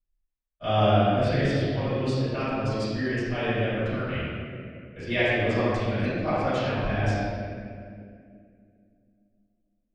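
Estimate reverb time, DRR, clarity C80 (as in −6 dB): 2.3 s, −18.5 dB, −2.0 dB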